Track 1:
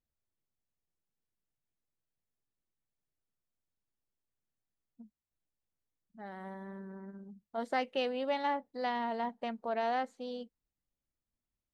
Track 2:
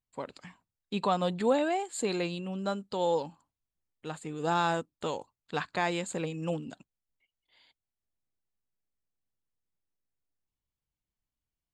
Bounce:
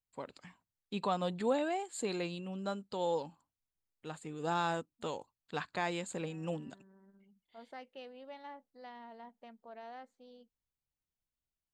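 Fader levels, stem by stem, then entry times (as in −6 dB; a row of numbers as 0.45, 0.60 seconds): −16.0, −5.5 decibels; 0.00, 0.00 seconds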